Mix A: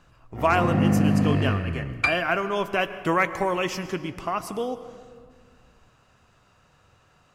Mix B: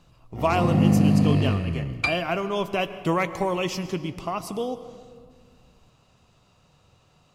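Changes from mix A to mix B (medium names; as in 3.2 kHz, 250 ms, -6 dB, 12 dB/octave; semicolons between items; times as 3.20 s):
first sound: add treble shelf 5.3 kHz +11 dB; master: add fifteen-band graphic EQ 160 Hz +4 dB, 1.6 kHz -10 dB, 4 kHz +4 dB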